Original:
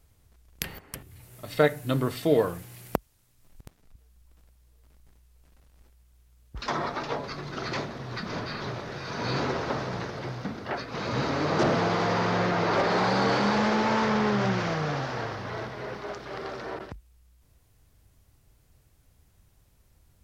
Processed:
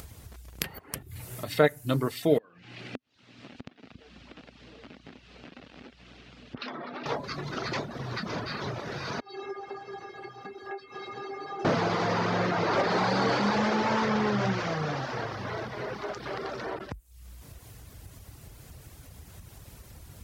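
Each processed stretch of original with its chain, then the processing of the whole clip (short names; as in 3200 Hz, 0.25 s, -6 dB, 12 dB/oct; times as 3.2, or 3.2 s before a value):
2.38–7.06 compressor 10:1, threshold -41 dBFS + speaker cabinet 200–4300 Hz, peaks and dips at 250 Hz +9 dB, 980 Hz -5 dB, 2700 Hz +4 dB
9.2–11.65 HPF 170 Hz 6 dB/oct + high shelf 2900 Hz -10.5 dB + metallic resonator 390 Hz, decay 0.23 s, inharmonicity 0.008
whole clip: upward compressor, threshold -28 dBFS; HPF 54 Hz; reverb removal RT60 0.58 s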